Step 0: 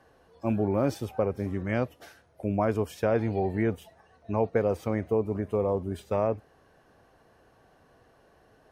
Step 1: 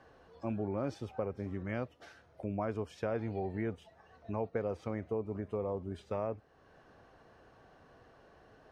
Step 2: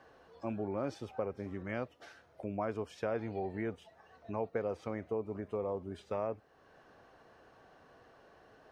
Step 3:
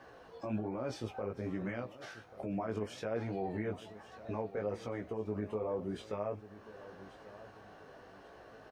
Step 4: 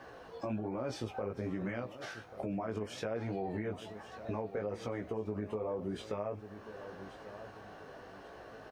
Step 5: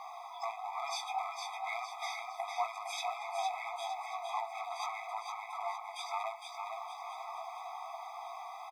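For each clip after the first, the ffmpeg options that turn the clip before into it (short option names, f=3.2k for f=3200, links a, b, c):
-af "lowpass=5.9k,equalizer=f=1.3k:t=o:w=0.31:g=2.5,acompressor=threshold=-49dB:ratio=1.5"
-af "lowshelf=f=180:g=-8,volume=1dB"
-af "alimiter=level_in=8.5dB:limit=-24dB:level=0:latency=1:release=54,volume=-8.5dB,flanger=delay=16:depth=3.6:speed=1.2,aecho=1:1:1138|2276|3414:0.158|0.0618|0.0241,volume=8dB"
-af "acompressor=threshold=-37dB:ratio=6,volume=4dB"
-af "asoftclip=type=hard:threshold=-34.5dB,aecho=1:1:459|918|1377|1836|2295:0.562|0.247|0.109|0.0479|0.0211,afftfilt=real='re*eq(mod(floor(b*sr/1024/650),2),1)':imag='im*eq(mod(floor(b*sr/1024/650),2),1)':win_size=1024:overlap=0.75,volume=10.5dB"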